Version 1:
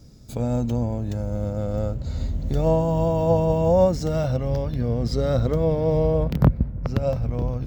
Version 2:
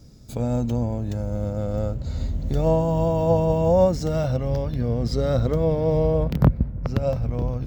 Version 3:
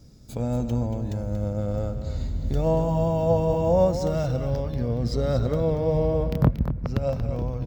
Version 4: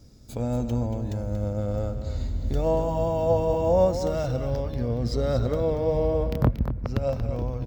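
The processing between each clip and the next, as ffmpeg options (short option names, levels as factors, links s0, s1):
-af anull
-af "aecho=1:1:233:0.335,volume=0.75"
-af "equalizer=f=160:t=o:w=0.33:g=-8.5"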